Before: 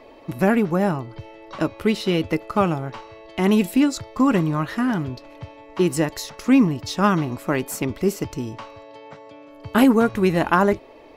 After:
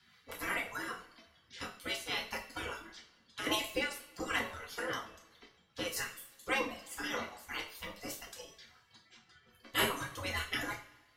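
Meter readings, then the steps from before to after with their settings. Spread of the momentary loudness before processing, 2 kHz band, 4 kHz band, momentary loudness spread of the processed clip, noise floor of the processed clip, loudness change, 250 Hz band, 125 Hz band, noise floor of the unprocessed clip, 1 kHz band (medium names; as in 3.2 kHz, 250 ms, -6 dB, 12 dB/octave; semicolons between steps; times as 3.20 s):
17 LU, -7.5 dB, -4.5 dB, 17 LU, -68 dBFS, -16.5 dB, -27.0 dB, -25.5 dB, -46 dBFS, -16.0 dB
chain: spectral gate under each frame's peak -20 dB weak; band-stop 2.5 kHz, Q 11; reverb removal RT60 1.6 s; rotary cabinet horn 5 Hz; two-slope reverb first 0.39 s, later 1.7 s, from -21 dB, DRR -2 dB; trim -2 dB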